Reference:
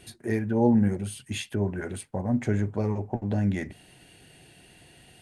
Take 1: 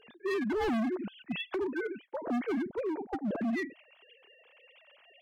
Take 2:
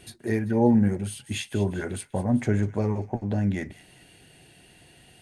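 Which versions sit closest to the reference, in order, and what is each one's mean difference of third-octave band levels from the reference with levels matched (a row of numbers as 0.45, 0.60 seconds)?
2, 1; 1.5, 11.0 decibels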